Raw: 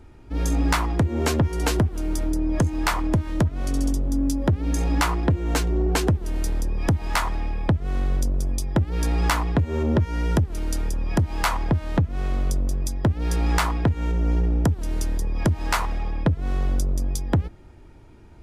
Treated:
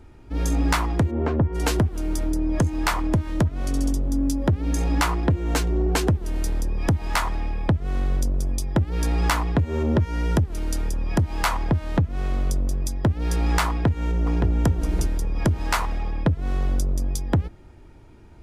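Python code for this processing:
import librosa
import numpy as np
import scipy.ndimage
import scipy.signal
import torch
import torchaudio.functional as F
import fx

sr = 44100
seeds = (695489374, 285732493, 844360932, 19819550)

y = fx.bessel_lowpass(x, sr, hz=1100.0, order=2, at=(1.1, 1.54), fade=0.02)
y = fx.echo_throw(y, sr, start_s=13.69, length_s=0.8, ms=570, feedback_pct=30, wet_db=-4.5)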